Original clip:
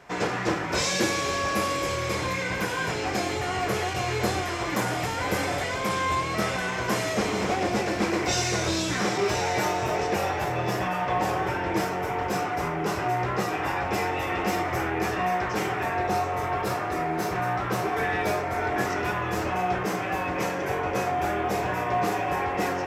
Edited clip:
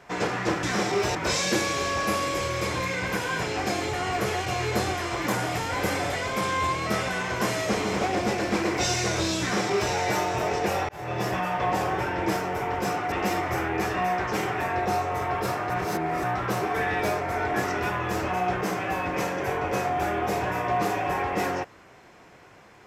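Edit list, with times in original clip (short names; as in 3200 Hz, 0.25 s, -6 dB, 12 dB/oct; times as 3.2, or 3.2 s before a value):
8.89–9.41 copy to 0.63
10.37–10.81 fade in equal-power
12.6–14.34 cut
16.92–17.46 reverse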